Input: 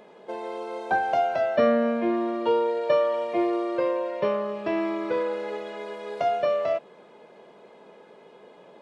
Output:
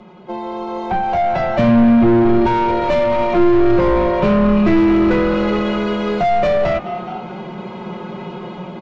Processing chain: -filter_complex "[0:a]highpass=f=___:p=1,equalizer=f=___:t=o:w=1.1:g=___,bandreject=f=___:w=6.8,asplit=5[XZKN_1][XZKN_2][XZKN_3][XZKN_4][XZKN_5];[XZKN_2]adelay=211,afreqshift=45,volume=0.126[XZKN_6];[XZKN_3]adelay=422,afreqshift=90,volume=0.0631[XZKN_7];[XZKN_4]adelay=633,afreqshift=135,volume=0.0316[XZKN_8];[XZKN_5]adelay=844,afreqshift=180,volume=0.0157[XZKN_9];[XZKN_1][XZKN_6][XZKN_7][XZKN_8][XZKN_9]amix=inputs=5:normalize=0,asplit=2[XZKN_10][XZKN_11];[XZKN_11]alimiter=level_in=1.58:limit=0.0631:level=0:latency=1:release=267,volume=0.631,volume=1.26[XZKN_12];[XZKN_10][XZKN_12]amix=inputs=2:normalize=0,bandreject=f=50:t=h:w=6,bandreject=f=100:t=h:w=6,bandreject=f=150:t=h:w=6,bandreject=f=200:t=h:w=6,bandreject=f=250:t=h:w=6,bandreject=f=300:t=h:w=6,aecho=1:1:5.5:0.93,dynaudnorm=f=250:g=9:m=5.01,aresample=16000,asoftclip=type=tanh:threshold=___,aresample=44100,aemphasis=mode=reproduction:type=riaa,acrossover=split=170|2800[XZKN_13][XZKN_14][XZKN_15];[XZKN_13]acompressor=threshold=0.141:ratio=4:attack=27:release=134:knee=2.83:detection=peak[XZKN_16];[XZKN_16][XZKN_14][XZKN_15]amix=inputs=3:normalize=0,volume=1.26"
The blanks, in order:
46, 490, -12.5, 1.7k, 0.15